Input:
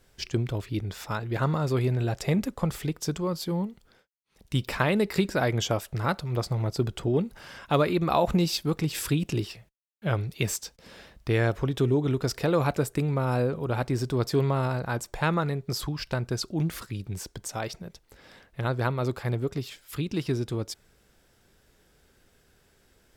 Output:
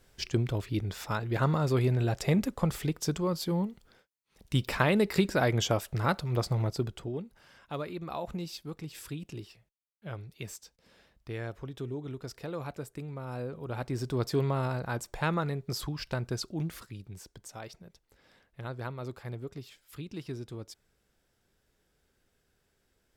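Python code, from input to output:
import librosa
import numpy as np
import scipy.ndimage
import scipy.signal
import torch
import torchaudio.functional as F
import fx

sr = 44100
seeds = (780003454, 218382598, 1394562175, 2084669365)

y = fx.gain(x, sr, db=fx.line((6.61, -1.0), (7.26, -13.5), (13.21, -13.5), (14.15, -4.0), (16.34, -4.0), (17.17, -11.0)))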